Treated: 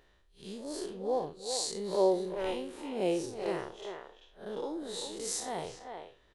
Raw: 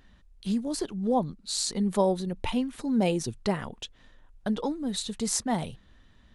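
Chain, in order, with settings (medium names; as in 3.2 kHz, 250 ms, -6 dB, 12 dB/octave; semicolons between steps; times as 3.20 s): spectral blur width 130 ms; resonant low shelf 300 Hz -7.5 dB, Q 3; speakerphone echo 390 ms, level -6 dB; trim -2 dB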